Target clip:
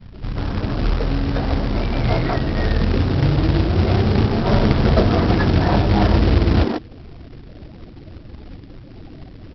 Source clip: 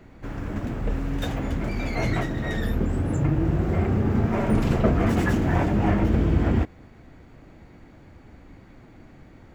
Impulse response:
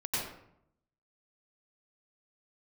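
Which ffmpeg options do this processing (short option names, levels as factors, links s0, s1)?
-filter_complex "[0:a]lowpass=1400,acrossover=split=230[s0][s1];[s1]adelay=130[s2];[s0][s2]amix=inputs=2:normalize=0,afftfilt=real='re*gte(hypot(re,im),0.00631)':imag='im*gte(hypot(re,im),0.00631)':win_size=1024:overlap=0.75,asplit=2[s3][s4];[s4]acompressor=threshold=0.02:ratio=6,volume=1.12[s5];[s3][s5]amix=inputs=2:normalize=0,bandreject=f=160.7:t=h:w=4,bandreject=f=321.4:t=h:w=4,aresample=11025,acrusher=bits=3:mode=log:mix=0:aa=0.000001,aresample=44100,volume=1.78"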